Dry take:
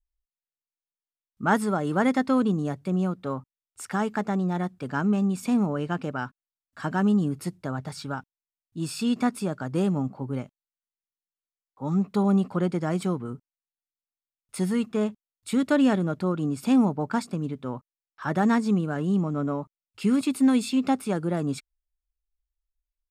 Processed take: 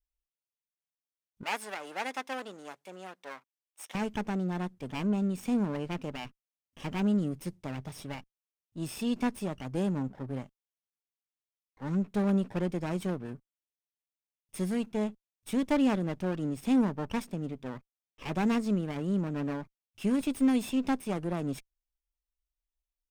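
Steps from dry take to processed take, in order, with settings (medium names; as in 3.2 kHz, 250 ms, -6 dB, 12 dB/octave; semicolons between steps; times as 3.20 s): comb filter that takes the minimum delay 0.35 ms; 1.43–3.95 s: high-pass 720 Hz 12 dB/octave; trim -5 dB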